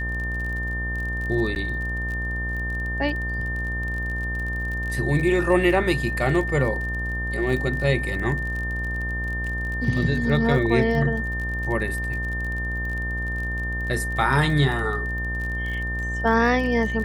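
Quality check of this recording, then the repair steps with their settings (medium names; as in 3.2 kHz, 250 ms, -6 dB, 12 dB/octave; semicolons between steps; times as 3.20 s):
buzz 60 Hz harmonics 21 -29 dBFS
crackle 33 per s -30 dBFS
whine 1.8 kHz -28 dBFS
1.55–1.56 s: dropout 9.7 ms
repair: de-click; de-hum 60 Hz, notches 21; band-stop 1.8 kHz, Q 30; interpolate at 1.55 s, 9.7 ms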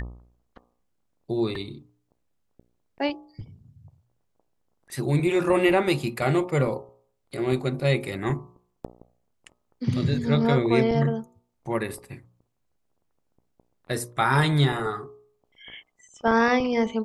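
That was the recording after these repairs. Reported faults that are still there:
nothing left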